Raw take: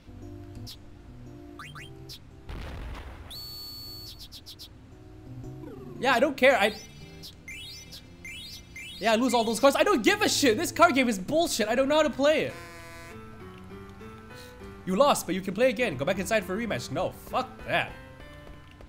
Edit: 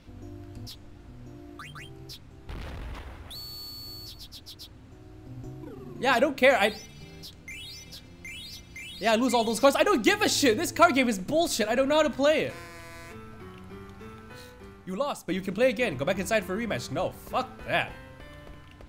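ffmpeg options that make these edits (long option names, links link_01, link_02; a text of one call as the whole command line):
ffmpeg -i in.wav -filter_complex "[0:a]asplit=2[link_01][link_02];[link_01]atrim=end=15.28,asetpts=PTS-STARTPTS,afade=type=out:start_time=14.32:duration=0.96:silence=0.16788[link_03];[link_02]atrim=start=15.28,asetpts=PTS-STARTPTS,afade=type=in:duration=0.004:curve=hsin:silence=0.16788[link_04];[link_03][link_04]concat=n=2:v=0:a=1" out.wav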